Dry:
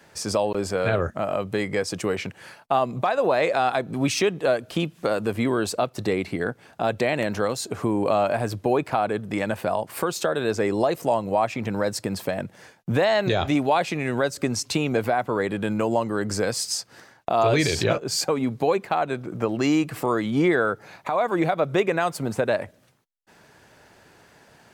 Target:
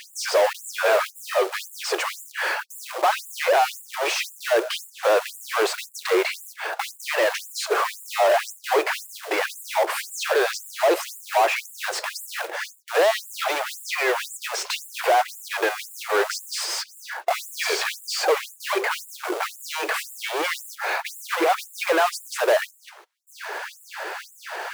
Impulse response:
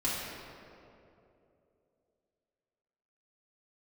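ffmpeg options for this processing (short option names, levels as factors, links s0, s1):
-filter_complex "[0:a]asplit=2[s0][s1];[s1]highpass=f=720:p=1,volume=56.2,asoftclip=type=tanh:threshold=0.316[s2];[s0][s2]amix=inputs=2:normalize=0,lowpass=f=1400:p=1,volume=0.501,acrusher=bits=4:mode=log:mix=0:aa=0.000001,afftfilt=real='re*gte(b*sr/1024,310*pow(7100/310,0.5+0.5*sin(2*PI*1.9*pts/sr)))':imag='im*gte(b*sr/1024,310*pow(7100/310,0.5+0.5*sin(2*PI*1.9*pts/sr)))':win_size=1024:overlap=0.75"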